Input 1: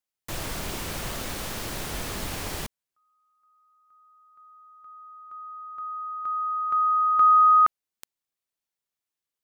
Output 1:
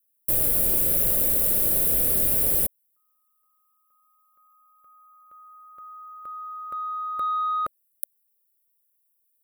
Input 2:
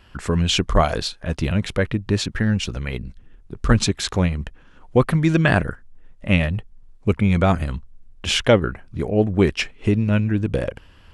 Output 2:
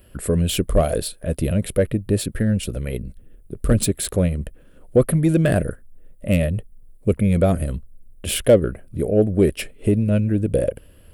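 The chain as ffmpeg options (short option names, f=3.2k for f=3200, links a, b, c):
-af "acontrast=71,lowshelf=f=710:t=q:w=3:g=6.5,aexciter=amount=14.6:drive=6:freq=8.9k,volume=-12.5dB"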